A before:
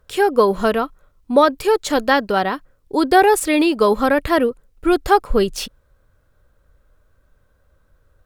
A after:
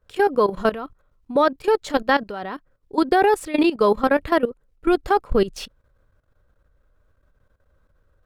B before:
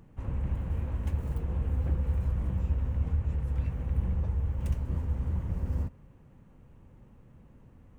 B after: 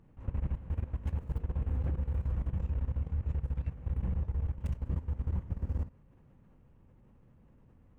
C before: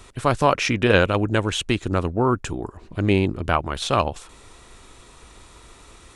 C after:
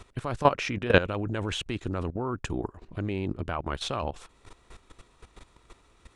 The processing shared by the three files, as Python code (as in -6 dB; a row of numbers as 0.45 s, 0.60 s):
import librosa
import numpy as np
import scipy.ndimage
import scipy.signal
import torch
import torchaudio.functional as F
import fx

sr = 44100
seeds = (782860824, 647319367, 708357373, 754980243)

y = fx.level_steps(x, sr, step_db=15)
y = fx.high_shelf(y, sr, hz=5600.0, db=-9.0)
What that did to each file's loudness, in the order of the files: -3.5 LU, -4.0 LU, -8.0 LU